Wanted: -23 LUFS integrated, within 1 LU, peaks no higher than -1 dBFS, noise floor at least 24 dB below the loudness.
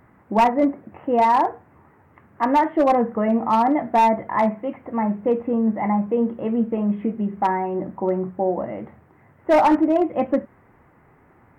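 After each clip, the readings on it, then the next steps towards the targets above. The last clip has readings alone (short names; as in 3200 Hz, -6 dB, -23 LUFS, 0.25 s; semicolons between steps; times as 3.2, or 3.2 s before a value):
clipped 0.9%; flat tops at -11.0 dBFS; loudness -21.0 LUFS; peak -11.0 dBFS; loudness target -23.0 LUFS
-> clip repair -11 dBFS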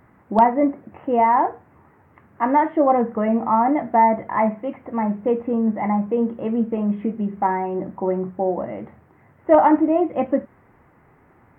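clipped 0.0%; loudness -20.5 LUFS; peak -2.0 dBFS; loudness target -23.0 LUFS
-> gain -2.5 dB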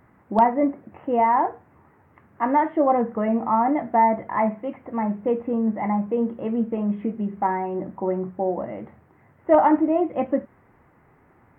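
loudness -23.0 LUFS; peak -4.5 dBFS; noise floor -58 dBFS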